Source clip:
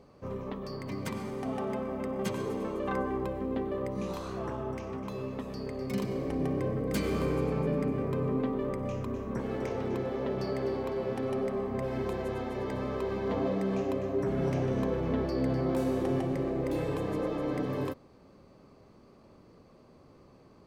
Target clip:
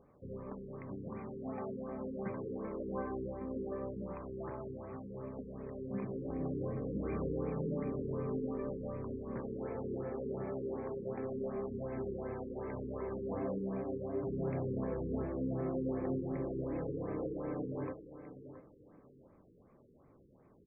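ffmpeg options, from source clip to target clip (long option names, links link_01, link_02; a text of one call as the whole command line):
ffmpeg -i in.wav -filter_complex "[0:a]asettb=1/sr,asplit=3[link_01][link_02][link_03];[link_01]atrim=end=13.594[link_04];[link_02]atrim=start=13.59:end=14.53,asetpts=PTS-STARTPTS,afade=type=in:duration=0.004:curve=qsin,afade=type=out:start_time=0.936:duration=0.004:curve=qsin,equalizer=frequency=4300:width_type=o:width=1.2:gain=-12[link_05];[link_03]atrim=start=14.526[link_06];[link_04][link_05]acrossfade=duration=0.004:curve1=hsin:curve2=qsin[link_07];[link_07][link_06]acrossfade=duration=0.004:curve1=qsin:curve2=hsin,aecho=1:1:674|1348|2022:0.251|0.0703|0.0197,afftfilt=real='re*lt(b*sr/1024,490*pow(2600/490,0.5+0.5*sin(2*PI*2.7*pts/sr)))':imag='im*lt(b*sr/1024,490*pow(2600/490,0.5+0.5*sin(2*PI*2.7*pts/sr)))':win_size=1024:overlap=0.75,volume=-7dB" out.wav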